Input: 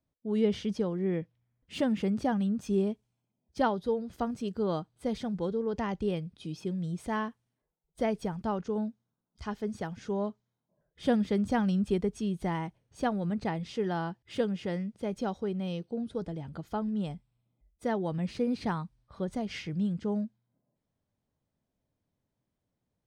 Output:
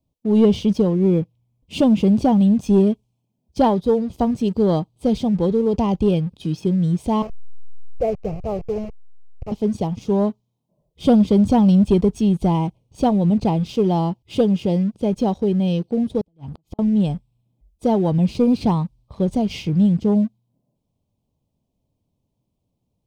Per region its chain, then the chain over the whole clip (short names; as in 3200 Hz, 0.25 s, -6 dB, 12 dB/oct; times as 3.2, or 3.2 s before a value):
7.22–9.52 level-crossing sampler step -34.5 dBFS + air absorption 220 m + fixed phaser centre 960 Hz, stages 6
16.21–16.79 compressor 4:1, threshold -43 dBFS + flipped gate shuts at -36 dBFS, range -29 dB
whole clip: Chebyshev band-stop 1000–2600 Hz, order 2; low shelf 340 Hz +7.5 dB; sample leveller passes 1; gain +6.5 dB